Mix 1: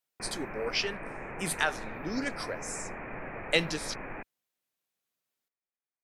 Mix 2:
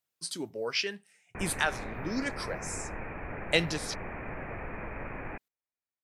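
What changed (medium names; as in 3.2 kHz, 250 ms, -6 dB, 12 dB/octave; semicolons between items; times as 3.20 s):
background: entry +1.15 s; master: add peaking EQ 64 Hz +12.5 dB 1.3 oct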